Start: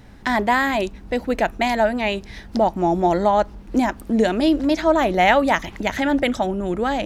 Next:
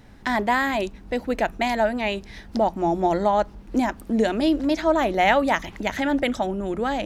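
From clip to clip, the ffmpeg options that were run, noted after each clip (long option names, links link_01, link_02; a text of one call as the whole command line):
ffmpeg -i in.wav -af "bandreject=frequency=60:width_type=h:width=6,bandreject=frequency=120:width_type=h:width=6,bandreject=frequency=180:width_type=h:width=6,volume=-3dB" out.wav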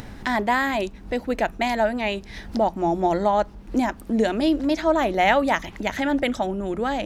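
ffmpeg -i in.wav -af "acompressor=mode=upward:threshold=-28dB:ratio=2.5" out.wav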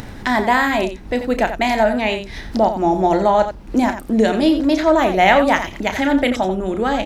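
ffmpeg -i in.wav -af "aecho=1:1:32.07|87.46:0.316|0.316,volume=5dB" out.wav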